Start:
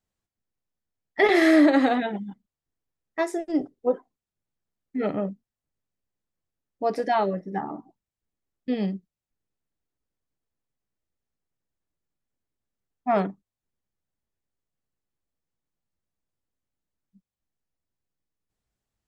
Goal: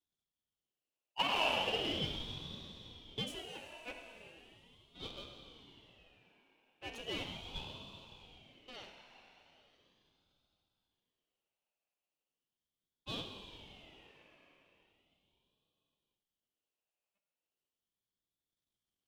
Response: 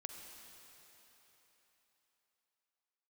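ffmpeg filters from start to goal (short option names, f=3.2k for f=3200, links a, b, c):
-filter_complex "[0:a]aeval=exprs='if(lt(val(0),0),0.251*val(0),val(0))':c=same,aeval=exprs='(tanh(15.8*val(0)+0.65)-tanh(0.65))/15.8':c=same,highpass=f=1.6k:t=q:w=4[a];[1:a]atrim=start_sample=2205[b];[a][b]afir=irnorm=-1:irlink=0,aeval=exprs='val(0)*sin(2*PI*1400*n/s+1400*0.3/0.38*sin(2*PI*0.38*n/s))':c=same,volume=5.5dB"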